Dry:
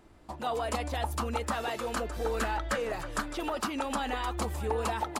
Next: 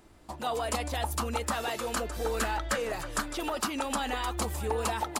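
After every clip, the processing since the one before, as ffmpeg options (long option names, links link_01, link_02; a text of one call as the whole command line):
ffmpeg -i in.wav -af "highshelf=frequency=4100:gain=7.5" out.wav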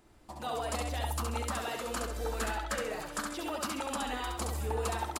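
ffmpeg -i in.wav -af "aecho=1:1:68|136|204|272:0.668|0.207|0.0642|0.0199,volume=-5.5dB" out.wav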